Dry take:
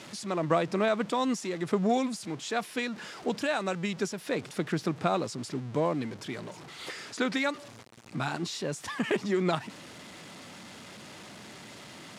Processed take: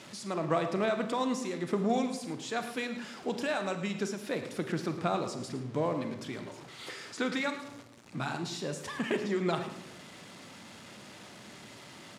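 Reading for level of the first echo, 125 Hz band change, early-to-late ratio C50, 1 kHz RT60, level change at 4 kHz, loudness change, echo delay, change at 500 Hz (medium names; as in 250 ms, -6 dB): -13.0 dB, -2.5 dB, 8.5 dB, 0.80 s, -3.0 dB, -2.5 dB, 109 ms, -2.5 dB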